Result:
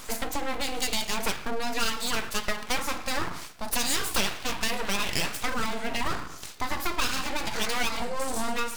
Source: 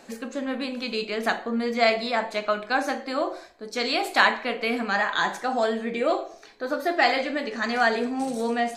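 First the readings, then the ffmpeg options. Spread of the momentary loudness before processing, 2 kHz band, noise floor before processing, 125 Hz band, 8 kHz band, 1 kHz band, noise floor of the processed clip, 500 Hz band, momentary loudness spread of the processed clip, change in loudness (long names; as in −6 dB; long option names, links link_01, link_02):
9 LU, −6.0 dB, −48 dBFS, can't be measured, +12.0 dB, −6.0 dB, −41 dBFS, −9.5 dB, 5 LU, −4.0 dB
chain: -af "acompressor=threshold=-33dB:ratio=4,aeval=exprs='abs(val(0))':channel_layout=same,crystalizer=i=4.5:c=0,highshelf=frequency=2400:gain=-7.5,volume=7.5dB"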